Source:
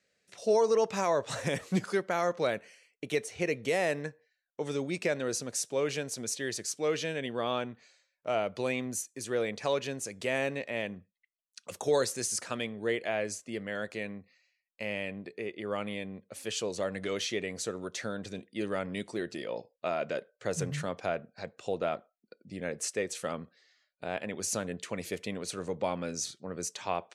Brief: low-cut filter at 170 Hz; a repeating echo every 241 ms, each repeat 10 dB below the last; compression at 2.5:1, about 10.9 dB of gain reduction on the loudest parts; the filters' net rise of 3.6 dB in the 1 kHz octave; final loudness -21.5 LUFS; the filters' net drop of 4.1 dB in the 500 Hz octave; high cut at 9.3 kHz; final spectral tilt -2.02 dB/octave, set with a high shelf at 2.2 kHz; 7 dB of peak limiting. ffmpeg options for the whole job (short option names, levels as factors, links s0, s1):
-af "highpass=170,lowpass=9300,equalizer=f=500:t=o:g=-7,equalizer=f=1000:t=o:g=5.5,highshelf=f=2200:g=8,acompressor=threshold=0.0112:ratio=2.5,alimiter=level_in=1.68:limit=0.0631:level=0:latency=1,volume=0.596,aecho=1:1:241|482|723|964:0.316|0.101|0.0324|0.0104,volume=9.44"